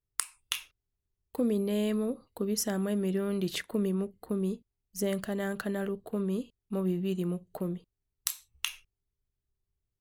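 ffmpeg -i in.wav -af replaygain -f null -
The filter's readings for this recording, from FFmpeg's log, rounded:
track_gain = +13.8 dB
track_peak = 0.180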